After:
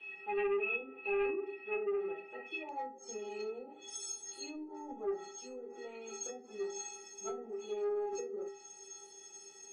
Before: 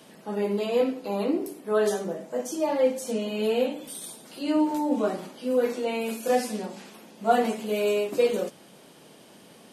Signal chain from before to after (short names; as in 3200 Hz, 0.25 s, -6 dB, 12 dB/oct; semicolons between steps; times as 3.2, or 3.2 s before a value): HPF 150 Hz 12 dB/oct; treble ducked by the level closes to 430 Hz, closed at -19.5 dBFS; metallic resonator 390 Hz, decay 0.5 s, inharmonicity 0.03; soft clip -39.5 dBFS, distortion -14 dB; synth low-pass 2600 Hz, resonance Q 15, from 2.69 s 6500 Hz; gain +10.5 dB